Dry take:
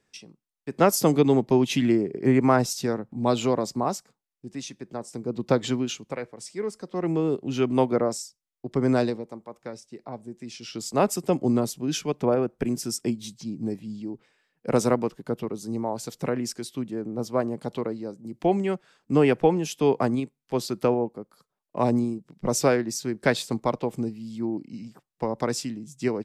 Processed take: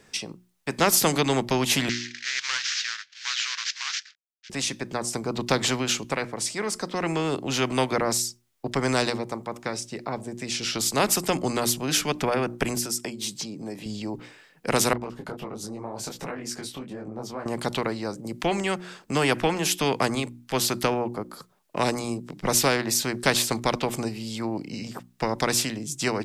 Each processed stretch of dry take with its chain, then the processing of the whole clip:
1.89–4.50 s: CVSD coder 32 kbps + elliptic high-pass 1.6 kHz, stop band 60 dB + loudspeaker Doppler distortion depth 0.14 ms
12.77–13.86 s: high-pass 200 Hz + compression 2:1, threshold -44 dBFS
14.93–17.46 s: treble shelf 3.4 kHz -7 dB + compression 2.5:1, threshold -41 dBFS + detune thickener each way 48 cents
whole clip: hum notches 60/120/180/240/300/360 Hz; spectrum-flattening compressor 2:1

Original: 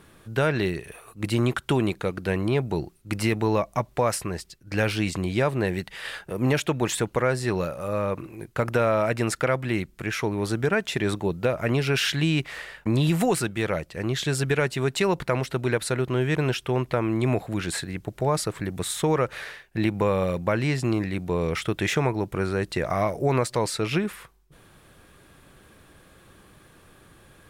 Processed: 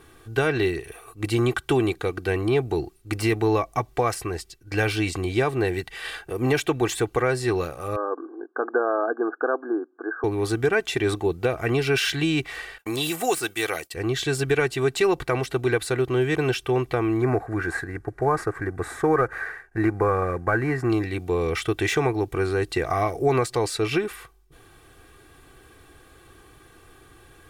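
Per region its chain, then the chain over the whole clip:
7.96–10.24 s: upward compressor, threshold -43 dBFS + brick-wall FIR band-pass 240–1700 Hz
12.78–13.94 s: RIAA curve recording + expander -43 dBFS
17.21–20.90 s: CVSD coder 64 kbps + resonant high shelf 2.3 kHz -11 dB, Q 3
whole clip: comb 2.6 ms, depth 67%; de-esser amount 50%

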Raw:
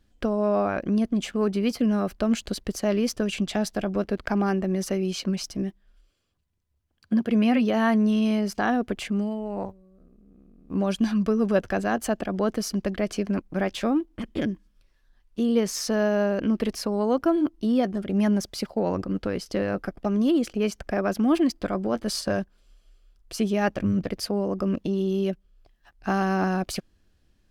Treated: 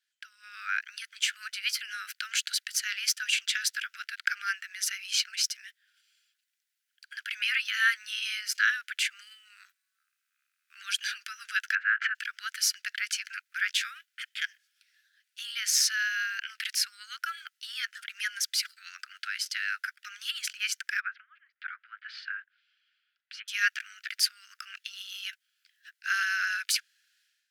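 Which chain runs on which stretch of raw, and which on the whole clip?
11.75–12.15 s: low-pass 2 kHz 24 dB/octave + level flattener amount 70%
21.00–23.48 s: low-pass that closes with the level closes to 520 Hz, closed at -18 dBFS + distance through air 350 m
whole clip: steep high-pass 1.4 kHz 96 dB/octave; level rider gain up to 14 dB; trim -6.5 dB

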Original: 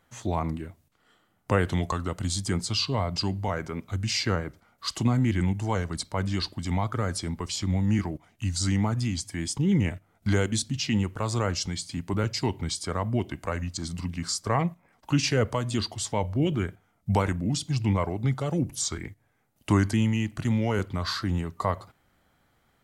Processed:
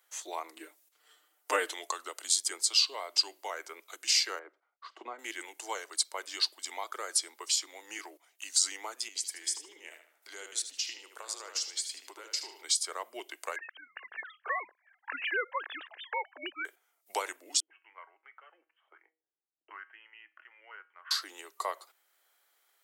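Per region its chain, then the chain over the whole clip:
0.56–1.73 s: resonant high-pass 220 Hz, resonance Q 2.1 + comb 6.6 ms, depth 99%
4.39–5.19 s: de-esser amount 95% + low-pass 1.5 kHz + expander -58 dBFS
9.08–12.64 s: compression 5:1, threshold -32 dBFS + tape echo 75 ms, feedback 43%, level -4 dB, low-pass 4.7 kHz
13.56–16.65 s: formants replaced by sine waves + high-pass 460 Hz 6 dB/octave + peaking EQ 1.7 kHz +14.5 dB 0.44 oct
17.60–21.11 s: Chebyshev low-pass 3.1 kHz, order 8 + feedback comb 160 Hz, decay 0.34 s + auto-wah 230–1500 Hz, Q 2.3, up, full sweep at -35 dBFS
whole clip: steep high-pass 340 Hz 48 dB/octave; tilt EQ +4 dB/octave; transient shaper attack +3 dB, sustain -1 dB; trim -7.5 dB

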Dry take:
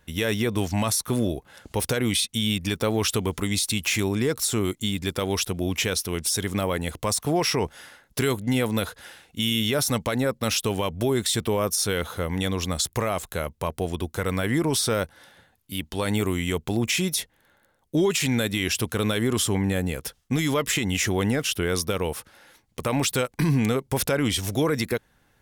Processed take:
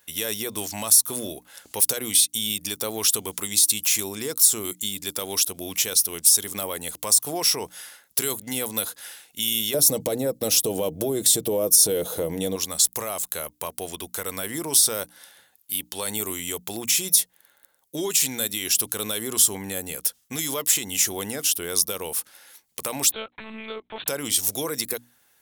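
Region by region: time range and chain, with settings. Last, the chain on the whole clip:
9.74–12.56 s: resonant low shelf 790 Hz +11.5 dB, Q 1.5 + comb 6.3 ms, depth 35% + compression 3:1, threshold -15 dBFS
23.12–24.08 s: bass shelf 470 Hz -6 dB + monotone LPC vocoder at 8 kHz 220 Hz
whole clip: RIAA curve recording; hum notches 60/120/180/240/300 Hz; dynamic bell 2 kHz, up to -7 dB, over -36 dBFS, Q 0.92; trim -2.5 dB

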